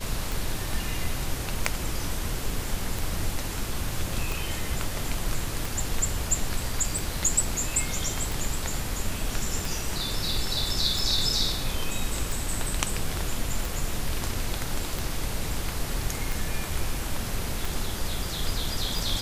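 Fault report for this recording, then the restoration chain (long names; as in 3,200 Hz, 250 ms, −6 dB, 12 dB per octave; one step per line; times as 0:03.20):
scratch tick 45 rpm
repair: click removal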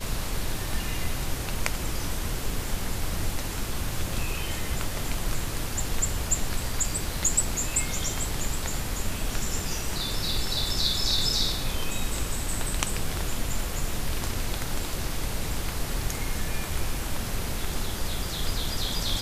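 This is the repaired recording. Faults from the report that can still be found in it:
none of them is left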